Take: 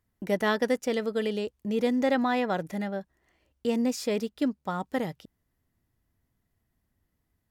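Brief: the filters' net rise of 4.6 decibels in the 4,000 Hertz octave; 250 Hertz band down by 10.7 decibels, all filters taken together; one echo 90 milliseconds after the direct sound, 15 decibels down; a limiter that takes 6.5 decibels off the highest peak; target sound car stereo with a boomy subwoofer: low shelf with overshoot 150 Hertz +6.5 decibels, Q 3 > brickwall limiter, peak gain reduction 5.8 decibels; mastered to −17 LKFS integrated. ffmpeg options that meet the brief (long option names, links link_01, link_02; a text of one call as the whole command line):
ffmpeg -i in.wav -af "equalizer=frequency=250:width_type=o:gain=-8,equalizer=frequency=4000:width_type=o:gain=6,alimiter=limit=-20.5dB:level=0:latency=1,lowshelf=frequency=150:width_type=q:width=3:gain=6.5,aecho=1:1:90:0.178,volume=19dB,alimiter=limit=-6.5dB:level=0:latency=1" out.wav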